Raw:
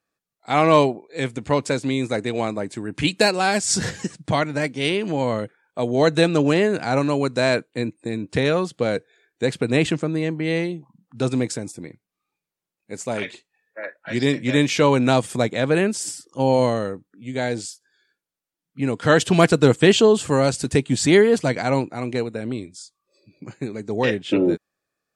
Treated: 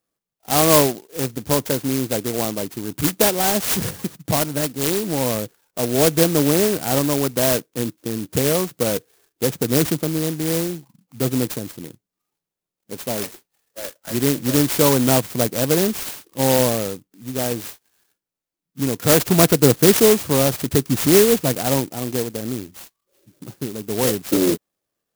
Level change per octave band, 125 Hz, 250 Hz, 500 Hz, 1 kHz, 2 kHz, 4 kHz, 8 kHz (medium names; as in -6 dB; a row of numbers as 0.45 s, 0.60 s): +1.0 dB, +0.5 dB, 0.0 dB, -1.5 dB, -4.0 dB, +1.5 dB, +7.5 dB